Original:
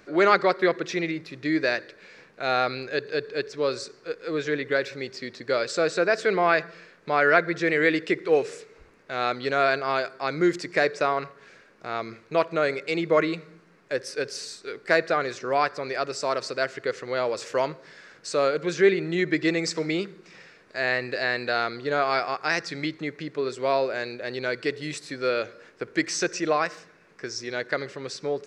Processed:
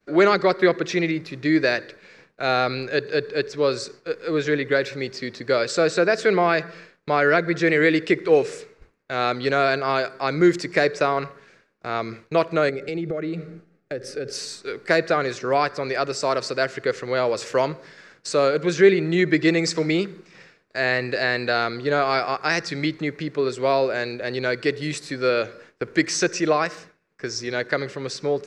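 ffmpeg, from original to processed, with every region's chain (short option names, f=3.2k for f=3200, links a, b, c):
-filter_complex "[0:a]asettb=1/sr,asplit=3[a][b][c];[a]atrim=end=12.694[d];[b]atrim=start=12.69:end=14.33,asetpts=PTS-STARTPTS,afade=t=in:d=0.004:c=qsin,afade=t=out:st=1.636:d=0.004:c=qsin,tiltshelf=f=930:g=5.5,acompressor=threshold=-30dB:ratio=6:attack=3.2:release=140:knee=1:detection=peak,asuperstop=centerf=1000:order=8:qfactor=4[e];[c]atrim=start=14.326[f];[d][e]acrossfade=d=0.004:c1=hsin:c2=qsin[g];[g][f]acrossfade=d=0.004:c1=qsin:c2=hsin,agate=range=-33dB:threshold=-44dB:ratio=3:detection=peak,lowshelf=f=180:g=6,acrossover=split=490|3000[h][i][j];[i]acompressor=threshold=-22dB:ratio=6[k];[h][k][j]amix=inputs=3:normalize=0,volume=4dB"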